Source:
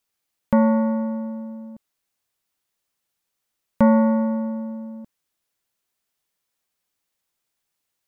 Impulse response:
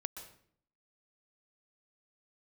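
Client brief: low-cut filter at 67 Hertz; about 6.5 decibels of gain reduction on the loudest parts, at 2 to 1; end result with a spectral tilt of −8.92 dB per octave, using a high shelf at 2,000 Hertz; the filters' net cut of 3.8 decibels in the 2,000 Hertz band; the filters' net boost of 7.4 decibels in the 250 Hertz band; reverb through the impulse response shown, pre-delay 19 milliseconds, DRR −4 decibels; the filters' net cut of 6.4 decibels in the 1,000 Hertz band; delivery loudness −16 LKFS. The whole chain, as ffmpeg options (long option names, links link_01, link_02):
-filter_complex "[0:a]highpass=67,equalizer=frequency=250:width_type=o:gain=8.5,equalizer=frequency=1000:width_type=o:gain=-8,highshelf=frequency=2000:gain=6.5,equalizer=frequency=2000:width_type=o:gain=-5,acompressor=threshold=-18dB:ratio=2,asplit=2[link_01][link_02];[1:a]atrim=start_sample=2205,adelay=19[link_03];[link_02][link_03]afir=irnorm=-1:irlink=0,volume=5.5dB[link_04];[link_01][link_04]amix=inputs=2:normalize=0"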